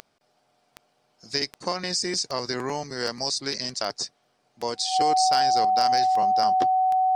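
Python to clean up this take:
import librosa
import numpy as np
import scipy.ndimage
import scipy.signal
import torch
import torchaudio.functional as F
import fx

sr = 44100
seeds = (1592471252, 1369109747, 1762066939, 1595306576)

y = fx.fix_declip(x, sr, threshold_db=-11.5)
y = fx.fix_declick_ar(y, sr, threshold=10.0)
y = fx.notch(y, sr, hz=750.0, q=30.0)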